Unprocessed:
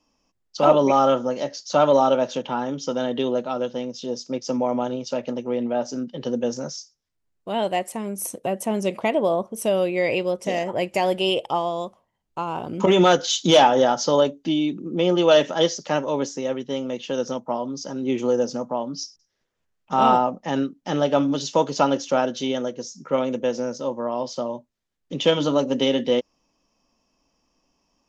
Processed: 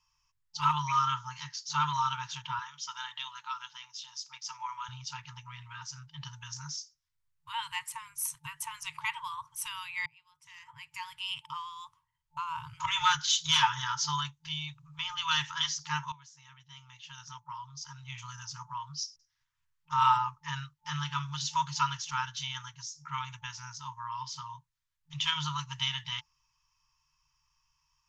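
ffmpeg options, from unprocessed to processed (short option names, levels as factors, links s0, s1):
-filter_complex "[0:a]asettb=1/sr,asplit=3[s0][s1][s2];[s0]atrim=end=2.594[s3];[s1]atrim=start=2.59:end=4.89,asetpts=PTS-STARTPTS,afade=t=in:d=0.004:c=qsin,afade=t=out:st=2.296:d=0.004:c=qsin,highpass=540[s4];[s2]atrim=start=4.886[s5];[s3][s4]acrossfade=d=0.004:c1=hsin:c2=qsin[s6];[s6][s5]acrossfade=d=0.004:c1=qsin:c2=hsin,asplit=3[s7][s8][s9];[s7]atrim=end=10.06,asetpts=PTS-STARTPTS,afade=t=out:st=10.056:d=0.004:c=hsin[s10];[s8]atrim=start=10.06:end=16.12,asetpts=PTS-STARTPTS,afade=t=in:d=2.58,afade=t=out:st=6.056:d=0.004:c=hsin:silence=0.105925[s11];[s9]atrim=start=16.12,asetpts=PTS-STARTPTS,afade=t=in:d=2.55:silence=0.105925[s12];[s10][s11][s12]concat=n=3:v=0:a=1,afftfilt=real='re*(1-between(b*sr/4096,160,880))':imag='im*(1-between(b*sr/4096,160,880))':win_size=4096:overlap=0.75,volume=0.668"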